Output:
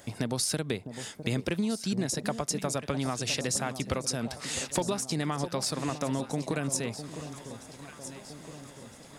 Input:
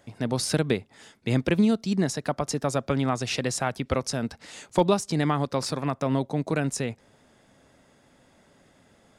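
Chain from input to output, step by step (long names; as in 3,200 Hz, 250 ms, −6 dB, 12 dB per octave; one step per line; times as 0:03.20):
high-shelf EQ 4,700 Hz +11 dB
downward compressor 4 to 1, threshold −34 dBFS, peak gain reduction 16 dB
on a send: delay that swaps between a low-pass and a high-pass 656 ms, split 920 Hz, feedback 72%, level −10 dB
on the sum: level +5 dB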